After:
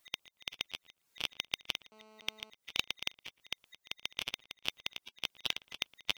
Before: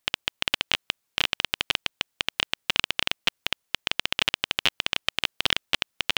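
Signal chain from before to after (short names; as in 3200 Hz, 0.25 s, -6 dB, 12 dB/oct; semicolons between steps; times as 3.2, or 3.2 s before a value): bin magnitudes rounded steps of 15 dB; dynamic EQ 2100 Hz, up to -5 dB, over -39 dBFS, Q 1.4; 4.2–4.68 compressor 6:1, threshold -34 dBFS, peak gain reduction 13.5 dB; auto swell 0.301 s; darkening echo 0.115 s, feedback 16%, low-pass 2000 Hz, level -22 dB; 1.92–2.5 GSM buzz -65 dBFS; gain +5.5 dB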